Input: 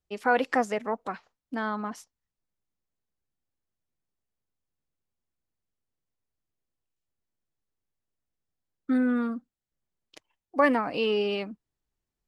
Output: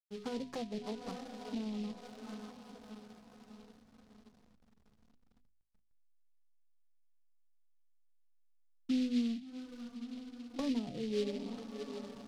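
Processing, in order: low-pass 1.8 kHz 24 dB/octave; feedback comb 140 Hz, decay 0.62 s, harmonics odd, mix 70%; on a send: echo that smears into a reverb 686 ms, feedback 61%, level -9.5 dB; on the sum: flange 0.77 Hz, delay 3.5 ms, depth 2.5 ms, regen -35%; tilt EQ -4 dB/octave; hysteresis with a dead band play -53.5 dBFS; peaking EQ 460 Hz -6 dB 1.9 oct; hum notches 50/100/150/200/250/300/350/400 Hz; low-pass that closes with the level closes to 510 Hz, closed at -37.5 dBFS; delay time shaken by noise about 3.3 kHz, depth 0.074 ms; trim +3 dB

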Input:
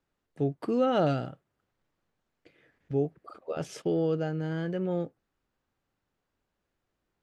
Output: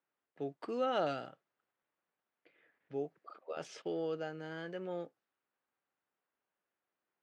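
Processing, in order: level-controlled noise filter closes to 2.7 kHz, open at -26.5 dBFS; frequency weighting A; trim -5 dB

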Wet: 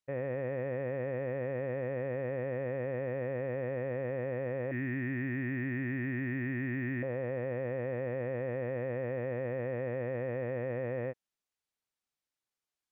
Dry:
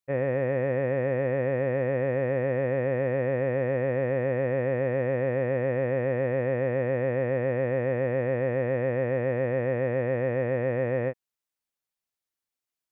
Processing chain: 4.71–7.03 s: FFT filter 200 Hz 0 dB, 320 Hz +11 dB, 490 Hz -28 dB, 700 Hz -16 dB, 1.2 kHz -8 dB, 1.8 kHz +5 dB, 4.3 kHz -2 dB; peak limiter -23 dBFS, peak gain reduction 6.5 dB; decimation joined by straight lines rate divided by 2×; trim -3.5 dB

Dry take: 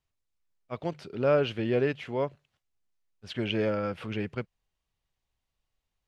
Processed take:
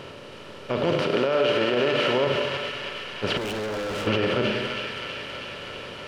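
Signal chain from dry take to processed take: spectral levelling over time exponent 0.4; 1.04–2.27 s: high-pass 330 Hz 6 dB/octave; feedback echo behind a high-pass 322 ms, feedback 73%, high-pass 1.6 kHz, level -6 dB; Schroeder reverb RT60 1.4 s, combs from 29 ms, DRR 5 dB; peak limiter -19.5 dBFS, peak gain reduction 10 dB; 3.37–4.07 s: overload inside the chain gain 34.5 dB; trim +6.5 dB

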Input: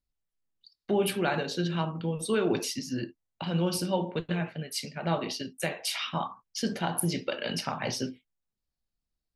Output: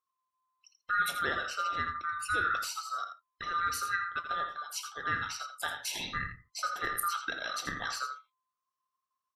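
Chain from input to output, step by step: split-band scrambler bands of 1 kHz; on a send: delay 83 ms -9 dB; on the sum: trim -4.5 dB

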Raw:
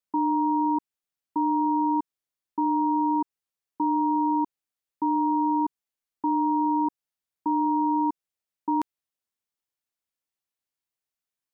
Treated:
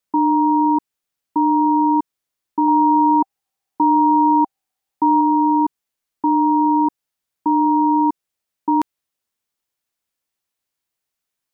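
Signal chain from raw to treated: 2.68–5.21 s: peaking EQ 780 Hz +13.5 dB 0.24 oct; trim +8 dB

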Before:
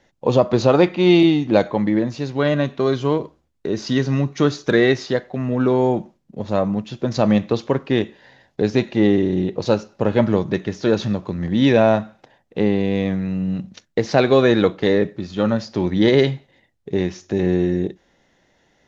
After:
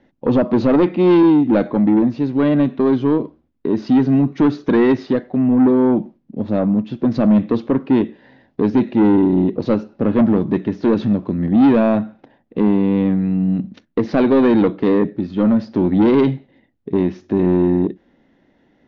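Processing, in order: peaking EQ 260 Hz +12 dB 0.95 oct; saturation -7.5 dBFS, distortion -11 dB; distance through air 240 m

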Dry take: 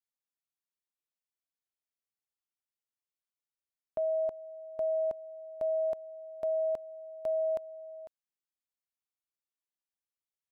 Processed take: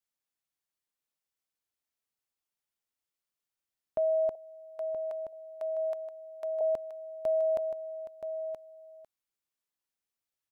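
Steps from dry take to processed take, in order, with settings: 4.35–6.61 s: high-pass 880 Hz 12 dB/octave; delay 975 ms -9 dB; trim +3 dB

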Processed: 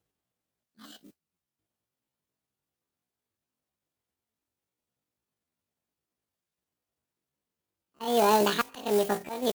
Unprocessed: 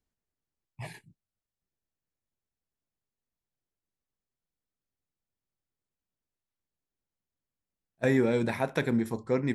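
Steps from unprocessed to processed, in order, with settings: partial rectifier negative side -3 dB; high-pass 42 Hz 12 dB/octave; slow attack 280 ms; modulation noise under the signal 11 dB; pitch shift +10 st; trim +6 dB

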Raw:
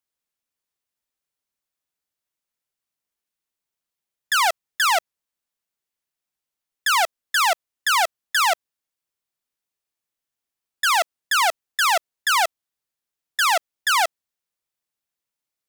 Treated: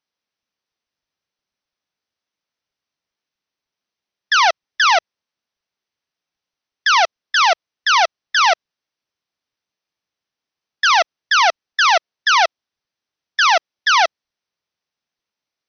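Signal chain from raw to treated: 6.99–8.45 s: dynamic bell 1.7 kHz, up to -3 dB, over -35 dBFS, Q 6.2; trim +5.5 dB; AC-3 48 kbps 44.1 kHz

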